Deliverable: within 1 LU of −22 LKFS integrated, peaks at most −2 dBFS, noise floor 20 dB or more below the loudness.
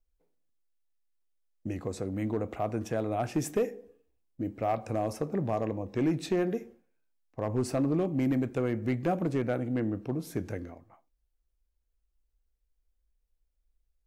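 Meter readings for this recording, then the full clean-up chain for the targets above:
share of clipped samples 0.4%; peaks flattened at −20.5 dBFS; integrated loudness −31.5 LKFS; sample peak −20.5 dBFS; target loudness −22.0 LKFS
→ clipped peaks rebuilt −20.5 dBFS
level +9.5 dB

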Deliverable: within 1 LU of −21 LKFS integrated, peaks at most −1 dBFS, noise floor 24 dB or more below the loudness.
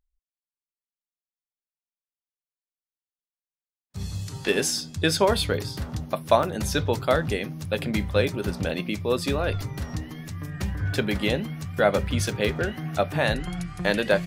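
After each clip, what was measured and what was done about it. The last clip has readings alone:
number of dropouts 3; longest dropout 3.2 ms; integrated loudness −26.0 LKFS; sample peak −4.5 dBFS; target loudness −21.0 LKFS
→ repair the gap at 0:06.43/0:12.31/0:13.10, 3.2 ms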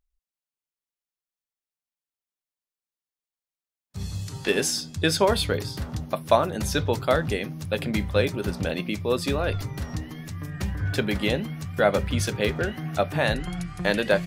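number of dropouts 0; integrated loudness −26.0 LKFS; sample peak −4.5 dBFS; target loudness −21.0 LKFS
→ level +5 dB
brickwall limiter −1 dBFS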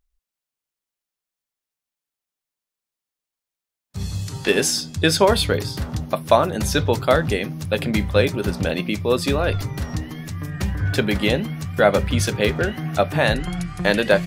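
integrated loudness −21.0 LKFS; sample peak −1.0 dBFS; background noise floor −88 dBFS

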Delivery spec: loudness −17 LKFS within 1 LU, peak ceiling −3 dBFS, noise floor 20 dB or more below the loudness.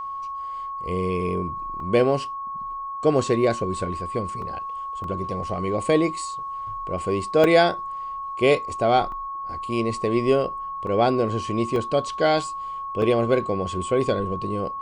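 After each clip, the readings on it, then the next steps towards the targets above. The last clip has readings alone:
number of dropouts 8; longest dropout 1.9 ms; interfering tone 1,100 Hz; level of the tone −29 dBFS; integrated loudness −24.0 LKFS; sample peak −5.5 dBFS; target loudness −17.0 LKFS
→ repair the gap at 0:01.80/0:04.42/0:05.04/0:07.44/0:09.12/0:10.87/0:11.76/0:13.02, 1.9 ms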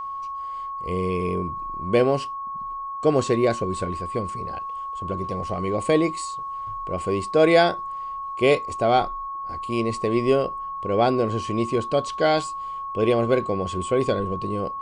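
number of dropouts 0; interfering tone 1,100 Hz; level of the tone −29 dBFS
→ notch filter 1,100 Hz, Q 30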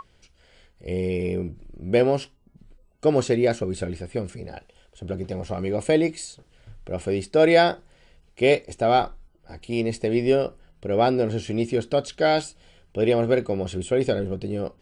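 interfering tone none found; integrated loudness −23.5 LKFS; sample peak −6.0 dBFS; target loudness −17.0 LKFS
→ level +6.5 dB
brickwall limiter −3 dBFS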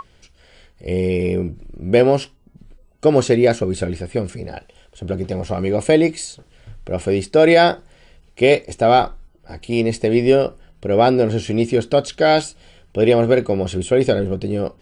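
integrated loudness −17.5 LKFS; sample peak −3.0 dBFS; background noise floor −53 dBFS

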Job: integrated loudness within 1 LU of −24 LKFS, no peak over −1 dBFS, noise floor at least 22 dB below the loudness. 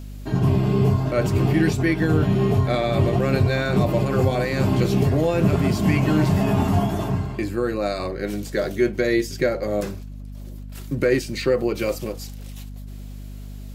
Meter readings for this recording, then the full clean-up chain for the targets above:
mains hum 50 Hz; hum harmonics up to 250 Hz; level of the hum −34 dBFS; integrated loudness −21.5 LKFS; sample peak −6.5 dBFS; target loudness −24.0 LKFS
→ hum removal 50 Hz, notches 5
level −2.5 dB

